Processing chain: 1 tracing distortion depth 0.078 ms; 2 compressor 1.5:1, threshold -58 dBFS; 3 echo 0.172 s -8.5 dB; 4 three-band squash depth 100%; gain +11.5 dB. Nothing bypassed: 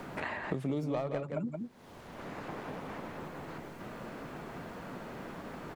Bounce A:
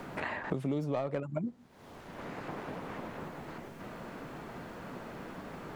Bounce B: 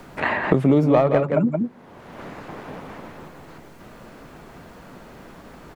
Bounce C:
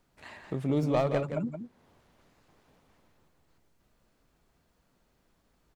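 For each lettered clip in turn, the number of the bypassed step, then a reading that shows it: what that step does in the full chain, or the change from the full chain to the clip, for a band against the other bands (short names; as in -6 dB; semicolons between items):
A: 3, momentary loudness spread change +1 LU; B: 2, mean gain reduction 9.5 dB; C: 4, momentary loudness spread change +11 LU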